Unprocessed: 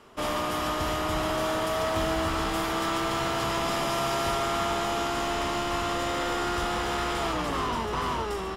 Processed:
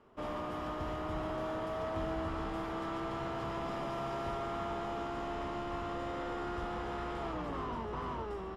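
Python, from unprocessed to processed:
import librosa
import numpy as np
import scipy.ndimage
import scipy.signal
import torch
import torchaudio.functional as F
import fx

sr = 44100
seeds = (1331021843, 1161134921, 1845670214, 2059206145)

y = fx.lowpass(x, sr, hz=1000.0, slope=6)
y = F.gain(torch.from_numpy(y), -7.5).numpy()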